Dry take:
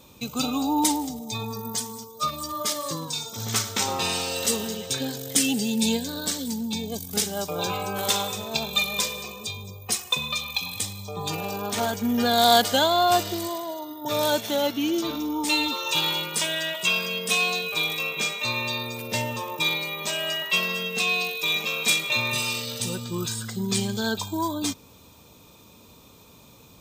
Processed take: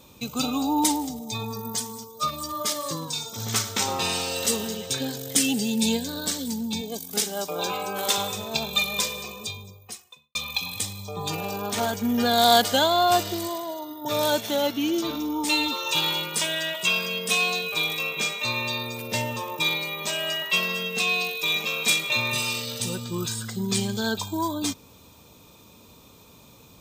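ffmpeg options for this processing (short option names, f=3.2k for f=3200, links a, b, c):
-filter_complex "[0:a]asettb=1/sr,asplit=3[a][b][c];[a]atrim=end=6.814[d];[b]atrim=start=6.81:end=8.18,asetpts=PTS-STARTPTS,afade=t=in:d=0.004:c=qsin,afade=t=out:st=1.366:d=0.004:c=qsin,highpass=220[e];[c]atrim=start=8.176[f];[d][e]acrossfade=d=0.004:c1=hsin:c2=qsin[g];[g][f]acrossfade=d=0.004:c1=qsin:c2=hsin,asplit=2[h][i];[h]atrim=end=10.35,asetpts=PTS-STARTPTS,afade=t=out:st=9.46:d=0.89:c=qua[j];[i]atrim=start=10.35,asetpts=PTS-STARTPTS,afade=t=in:d=0.004:c=hsin[k];[j][k]concat=n=2:v=0:a=1"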